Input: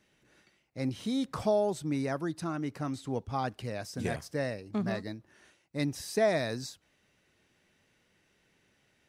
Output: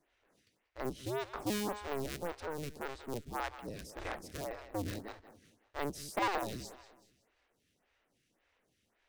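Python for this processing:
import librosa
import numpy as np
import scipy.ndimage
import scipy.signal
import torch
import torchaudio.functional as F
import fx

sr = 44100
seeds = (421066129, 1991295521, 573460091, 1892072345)

p1 = fx.cycle_switch(x, sr, every=2, mode='inverted')
p2 = p1 + fx.echo_feedback(p1, sr, ms=186, feedback_pct=38, wet_db=-14.0, dry=0)
p3 = fx.stagger_phaser(p2, sr, hz=1.8)
y = F.gain(torch.from_numpy(p3), -4.0).numpy()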